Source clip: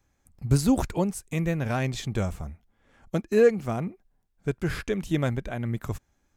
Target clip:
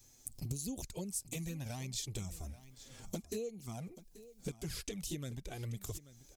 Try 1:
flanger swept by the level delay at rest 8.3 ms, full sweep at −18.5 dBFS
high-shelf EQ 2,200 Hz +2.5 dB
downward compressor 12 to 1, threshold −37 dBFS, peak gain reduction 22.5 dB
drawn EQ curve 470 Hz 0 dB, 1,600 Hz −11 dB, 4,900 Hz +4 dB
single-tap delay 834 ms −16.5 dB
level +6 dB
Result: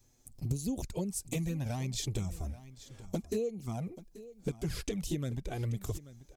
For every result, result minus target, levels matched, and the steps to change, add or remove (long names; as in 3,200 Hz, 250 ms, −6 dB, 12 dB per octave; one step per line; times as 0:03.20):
downward compressor: peak gain reduction −7.5 dB; 4,000 Hz band −3.5 dB
change: downward compressor 12 to 1, threshold −44.5 dBFS, peak gain reduction 29 dB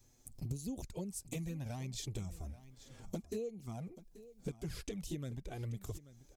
4,000 Hz band −3.5 dB
change: high-shelf EQ 2,200 Hz +12 dB